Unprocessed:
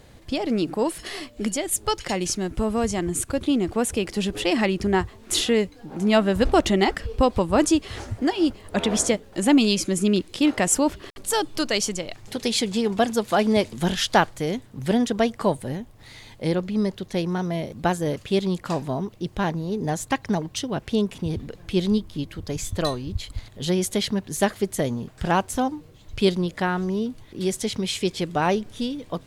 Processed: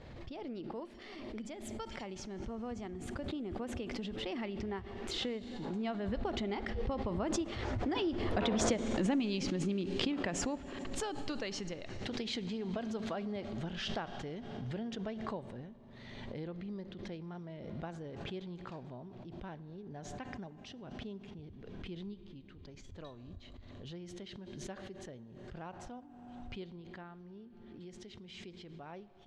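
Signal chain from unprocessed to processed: Doppler pass-by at 8.77 s, 15 m/s, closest 5.1 m; distance through air 180 m; compression 3:1, threshold -45 dBFS, peak gain reduction 20.5 dB; on a send at -16 dB: reverberation RT60 3.4 s, pre-delay 4 ms; on the sum: swell ahead of each attack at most 29 dB/s; trim +8 dB

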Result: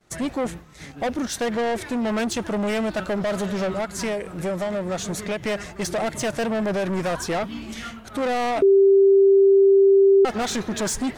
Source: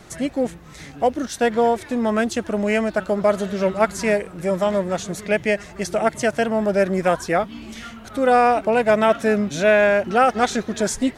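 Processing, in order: expander -33 dBFS; 3.70–5.43 s: compression 6:1, threshold -22 dBFS, peak gain reduction 10.5 dB; peak limiter -10.5 dBFS, peak gain reduction 7 dB; saturation -24.5 dBFS, distortion -7 dB; 8.62–10.25 s: bleep 392 Hz -14.5 dBFS; trim +3.5 dB

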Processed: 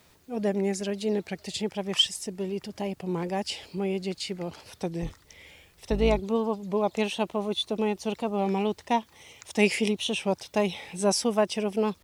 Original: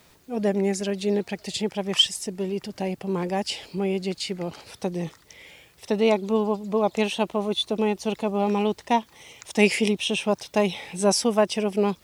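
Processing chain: 5.02–6.20 s: octave divider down 2 oct, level 0 dB; peaking EQ 82 Hz +7 dB 0.28 oct; warped record 33 1/3 rpm, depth 100 cents; trim -3.5 dB

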